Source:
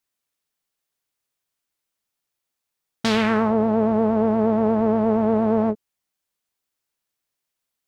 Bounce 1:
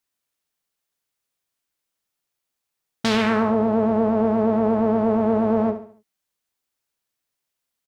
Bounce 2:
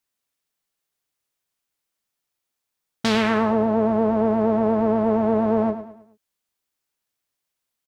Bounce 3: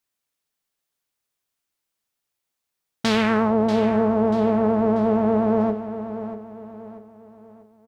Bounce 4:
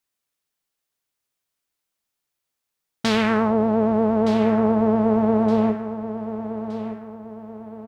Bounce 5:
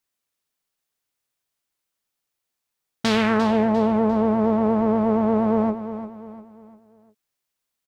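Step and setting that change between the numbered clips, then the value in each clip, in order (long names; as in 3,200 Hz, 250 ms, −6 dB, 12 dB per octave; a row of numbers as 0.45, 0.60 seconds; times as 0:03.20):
repeating echo, delay time: 70, 106, 638, 1,218, 349 milliseconds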